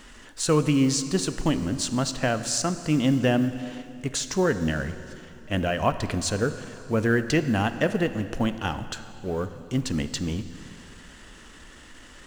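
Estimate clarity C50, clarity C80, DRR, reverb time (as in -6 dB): 11.5 dB, 12.5 dB, 10.5 dB, 2.8 s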